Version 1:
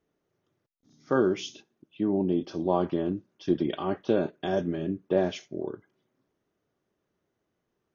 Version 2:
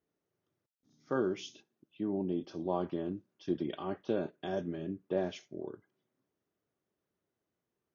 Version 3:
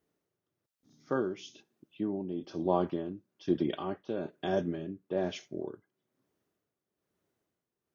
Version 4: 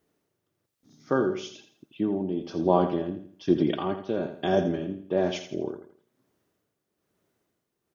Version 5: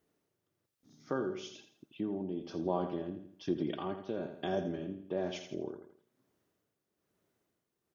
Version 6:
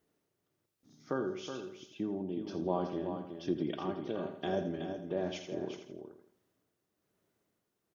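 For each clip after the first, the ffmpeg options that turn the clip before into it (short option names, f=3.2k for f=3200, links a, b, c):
-af "highpass=49,volume=-8dB"
-af "tremolo=f=1.1:d=0.64,volume=5.5dB"
-af "aecho=1:1:83|166|249|332:0.316|0.114|0.041|0.0148,volume=6.5dB"
-af "acompressor=threshold=-36dB:ratio=1.5,volume=-4.5dB"
-af "aecho=1:1:372:0.398"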